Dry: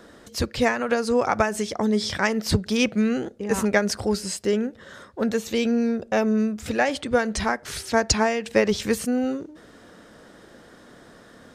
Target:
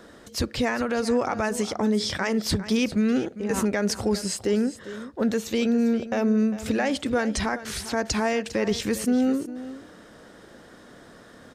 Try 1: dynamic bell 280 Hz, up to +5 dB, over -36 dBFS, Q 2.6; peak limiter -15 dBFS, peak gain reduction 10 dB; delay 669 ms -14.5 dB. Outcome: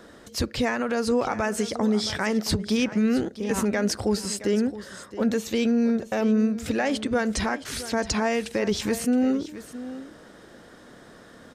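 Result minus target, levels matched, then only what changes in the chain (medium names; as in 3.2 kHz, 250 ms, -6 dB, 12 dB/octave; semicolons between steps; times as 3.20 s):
echo 267 ms late
change: delay 402 ms -14.5 dB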